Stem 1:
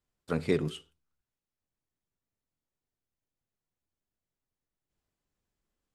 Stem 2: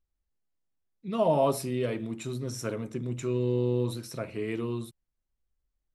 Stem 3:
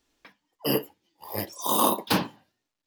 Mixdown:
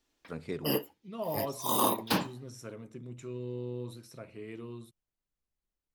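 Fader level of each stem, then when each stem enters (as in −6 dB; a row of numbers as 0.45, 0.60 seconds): −10.0, −11.0, −5.0 decibels; 0.00, 0.00, 0.00 seconds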